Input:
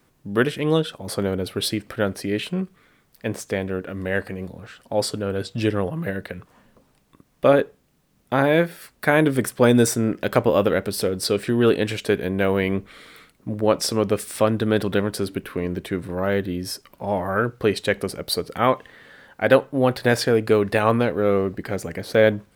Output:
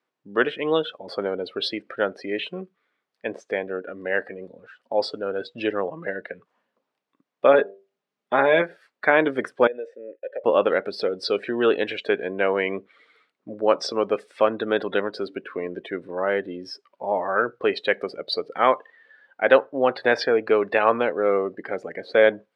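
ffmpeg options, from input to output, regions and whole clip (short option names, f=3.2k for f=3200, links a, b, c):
-filter_complex "[0:a]asettb=1/sr,asplit=3[a][b][c];[a]atrim=end=7.544[d];[b]atrim=start=7.54:end=8.62,asetpts=PTS-STARTPTS,afade=t=in:d=0.004:c=qsin,afade=t=out:st=1.076:d=0.004:c=qsin,equalizer=f=70:t=o:w=2.6:g=3,aecho=1:1:4.9:0.44,atrim=end_sample=47628,bandreject=f=98.07:t=h:w=4,bandreject=f=196.14:t=h:w=4,bandreject=f=294.21:t=h:w=4,bandreject=f=392.28:t=h:w=4,bandreject=f=490.35:t=h:w=4,bandreject=f=588.42:t=h:w=4,bandreject=f=686.49:t=h:w=4,bandreject=f=784.56:t=h:w=4,bandreject=f=882.63:t=h:w=4,bandreject=f=980.7:t=h:w=4[e];[c]atrim=start=8.616[f];[d][e]acrossfade=d=0.004:c1=hsin:c2=qsin[g];[g][f]acrossfade=d=0.004:c1=qsin:c2=hsin,asettb=1/sr,asplit=3[h][i][j];[h]atrim=end=9.674[k];[i]atrim=start=9.67:end=10.44,asetpts=PTS-STARTPTS,afade=t=in:d=0.004:c=qsin,afade=t=out:st=0.766:d=0.004:c=qsin,agate=range=-33dB:threshold=-34dB:ratio=3:release=100:detection=peak,asplit=3[l][m][n];[l]bandpass=f=530:t=q:w=8,volume=0dB[o];[m]bandpass=f=1.84k:t=q:w=8,volume=-6dB[p];[n]bandpass=f=2.48k:t=q:w=8,volume=-9dB[q];[o][p][q]amix=inputs=3:normalize=0,acompressor=threshold=-26dB:ratio=4:attack=3.2:release=140:knee=1:detection=peak[r];[j]atrim=start=10.436[s];[k][r]acrossfade=d=0.004:c1=hsin:c2=qsin[t];[t][s]acrossfade=d=0.004:c1=qsin:c2=hsin,lowpass=4.3k,afftdn=nr=16:nf=-36,highpass=420,volume=1.5dB"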